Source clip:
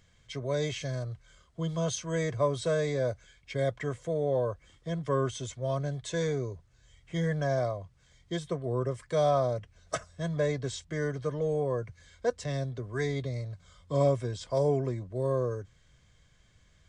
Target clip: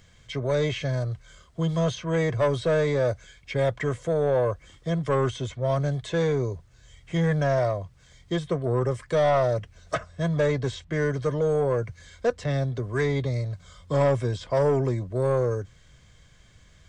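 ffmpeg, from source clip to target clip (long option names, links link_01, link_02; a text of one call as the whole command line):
ffmpeg -i in.wav -filter_complex "[0:a]acrossover=split=3600[link_01][link_02];[link_01]asoftclip=type=tanh:threshold=-24dB[link_03];[link_02]acompressor=threshold=-57dB:ratio=6[link_04];[link_03][link_04]amix=inputs=2:normalize=0,volume=8dB" out.wav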